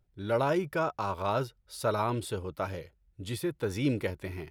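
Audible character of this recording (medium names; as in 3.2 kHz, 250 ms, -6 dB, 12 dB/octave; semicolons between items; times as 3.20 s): noise floor -69 dBFS; spectral tilt -5.5 dB/octave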